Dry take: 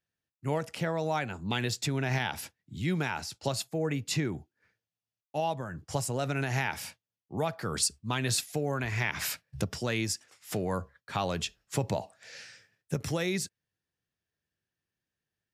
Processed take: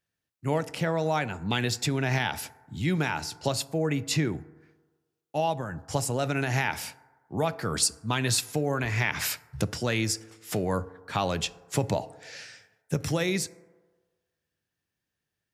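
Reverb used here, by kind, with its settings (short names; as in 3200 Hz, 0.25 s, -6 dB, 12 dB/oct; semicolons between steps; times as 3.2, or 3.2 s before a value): FDN reverb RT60 1.4 s, low-frequency decay 0.75×, high-frequency decay 0.3×, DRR 16.5 dB; gain +3.5 dB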